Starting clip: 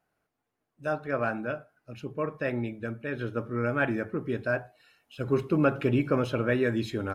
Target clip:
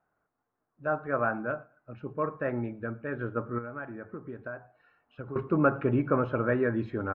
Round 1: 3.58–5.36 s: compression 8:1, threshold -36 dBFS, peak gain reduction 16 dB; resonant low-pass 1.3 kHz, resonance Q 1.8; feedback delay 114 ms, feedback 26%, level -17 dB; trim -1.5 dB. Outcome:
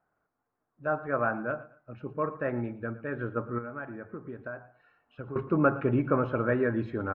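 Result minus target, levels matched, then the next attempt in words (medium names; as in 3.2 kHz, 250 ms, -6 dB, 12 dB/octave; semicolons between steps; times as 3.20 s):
echo-to-direct +9 dB
3.58–5.36 s: compression 8:1, threshold -36 dBFS, peak gain reduction 16 dB; resonant low-pass 1.3 kHz, resonance Q 1.8; feedback delay 114 ms, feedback 26%, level -26 dB; trim -1.5 dB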